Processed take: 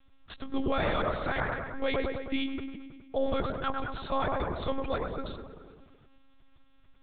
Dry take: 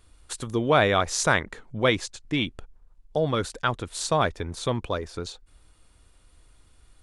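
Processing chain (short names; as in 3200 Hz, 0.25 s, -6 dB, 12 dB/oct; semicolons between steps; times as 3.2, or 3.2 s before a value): dark delay 0.106 s, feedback 62%, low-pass 1600 Hz, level -5 dB; limiter -15.5 dBFS, peak gain reduction 8.5 dB; monotone LPC vocoder at 8 kHz 270 Hz; gain -3.5 dB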